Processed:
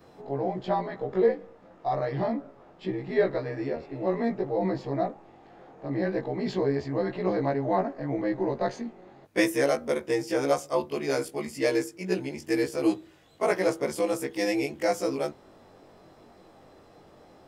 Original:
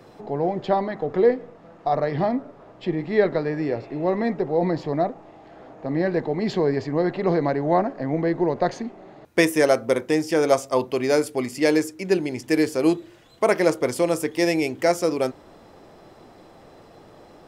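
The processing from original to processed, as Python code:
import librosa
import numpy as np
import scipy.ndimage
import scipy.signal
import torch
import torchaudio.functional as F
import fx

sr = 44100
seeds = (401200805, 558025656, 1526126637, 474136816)

y = fx.frame_reverse(x, sr, frame_ms=43.0)
y = F.gain(torch.from_numpy(y), -2.5).numpy()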